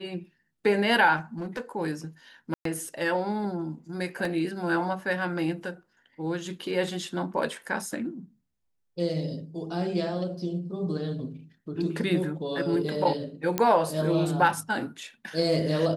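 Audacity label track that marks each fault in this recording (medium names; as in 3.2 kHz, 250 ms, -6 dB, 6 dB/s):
1.160000	1.610000	clipped -28.5 dBFS
2.540000	2.650000	dropout 113 ms
4.250000	4.250000	dropout 2.7 ms
13.580000	13.580000	pop -9 dBFS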